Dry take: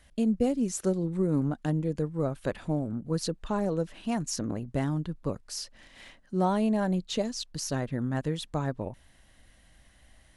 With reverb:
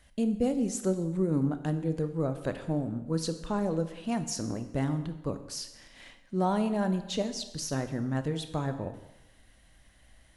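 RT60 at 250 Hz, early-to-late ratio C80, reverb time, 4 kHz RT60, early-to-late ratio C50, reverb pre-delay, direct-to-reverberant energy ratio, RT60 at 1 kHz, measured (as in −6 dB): 0.95 s, 13.0 dB, 1.0 s, 0.90 s, 11.0 dB, 15 ms, 9.0 dB, 1.0 s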